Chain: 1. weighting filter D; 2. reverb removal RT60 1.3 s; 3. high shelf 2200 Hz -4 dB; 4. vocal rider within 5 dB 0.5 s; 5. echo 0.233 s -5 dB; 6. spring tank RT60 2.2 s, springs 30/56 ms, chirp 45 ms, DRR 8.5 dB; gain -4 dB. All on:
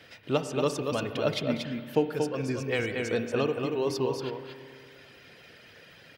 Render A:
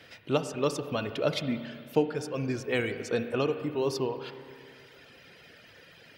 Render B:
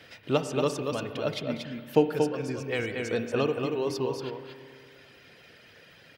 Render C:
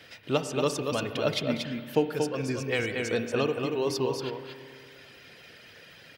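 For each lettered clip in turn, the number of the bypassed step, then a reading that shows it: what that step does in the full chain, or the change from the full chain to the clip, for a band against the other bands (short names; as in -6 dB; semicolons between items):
5, echo-to-direct -3.0 dB to -8.5 dB; 4, crest factor change +3.5 dB; 3, 8 kHz band +3.0 dB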